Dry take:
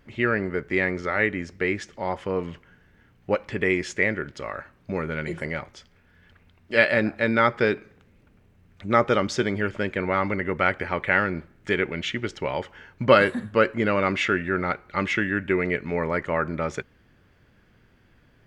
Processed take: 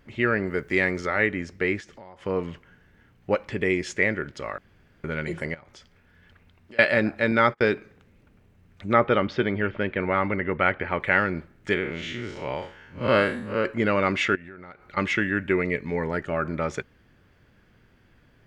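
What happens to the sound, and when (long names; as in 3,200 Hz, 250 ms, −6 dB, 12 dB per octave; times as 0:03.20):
0:00.47–0:01.07: high-shelf EQ 5,100 Hz +10.5 dB
0:01.80–0:02.26: downward compressor 8 to 1, threshold −41 dBFS
0:03.39–0:03.87: dynamic equaliser 1,300 Hz, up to −5 dB, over −40 dBFS, Q 1
0:04.58–0:05.04: fill with room tone
0:05.54–0:06.79: downward compressor 5 to 1, threshold −44 dBFS
0:07.31–0:07.74: noise gate −33 dBFS, range −27 dB
0:08.93–0:11.00: low-pass filter 3,600 Hz 24 dB per octave
0:11.74–0:13.65: spectrum smeared in time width 130 ms
0:14.35–0:14.97: downward compressor 8 to 1, threshold −39 dBFS
0:15.62–0:16.45: phaser whose notches keep moving one way falling 1 Hz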